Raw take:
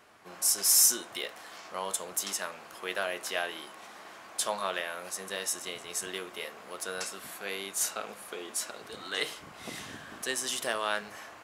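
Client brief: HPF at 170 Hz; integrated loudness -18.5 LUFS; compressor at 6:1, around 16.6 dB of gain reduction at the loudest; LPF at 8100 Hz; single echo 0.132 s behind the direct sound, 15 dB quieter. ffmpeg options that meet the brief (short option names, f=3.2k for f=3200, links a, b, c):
-af "highpass=170,lowpass=8.1k,acompressor=threshold=-40dB:ratio=6,aecho=1:1:132:0.178,volume=24.5dB"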